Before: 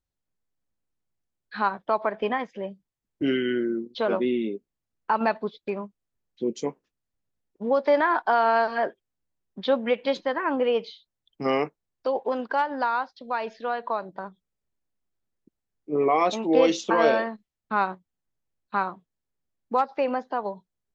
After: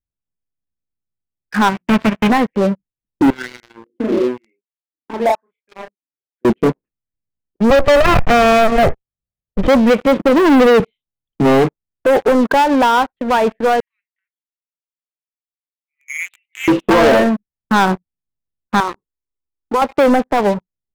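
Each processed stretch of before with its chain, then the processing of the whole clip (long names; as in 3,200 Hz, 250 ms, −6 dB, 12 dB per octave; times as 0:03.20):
0:01.69–0:02.28: spectral envelope flattened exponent 0.1 + mains-hum notches 60/120/180/240/300/360 Hz + transient designer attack −1 dB, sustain −6 dB
0:03.30–0:06.45: LFO wah 1 Hz 270–2,300 Hz, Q 7.6 + double-tracking delay 32 ms −2 dB
0:07.70–0:09.68: lower of the sound and its delayed copy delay 1.6 ms + low-shelf EQ 450 Hz +4.5 dB
0:10.19–0:10.80: Chebyshev high-pass filter 180 Hz, order 4 + spectral tilt −4 dB per octave
0:13.80–0:16.68: Chebyshev high-pass filter 2,000 Hz, order 6 + notch filter 2,500 Hz, Q 26
0:18.80–0:19.82: parametric band 890 Hz +4 dB 1.5 octaves + downward compressor 1.5 to 1, threshold −42 dBFS + phaser with its sweep stopped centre 660 Hz, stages 6
whole clip: Butterworth low-pass 2,700 Hz 48 dB per octave; low-shelf EQ 430 Hz +12 dB; leveller curve on the samples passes 5; level −4 dB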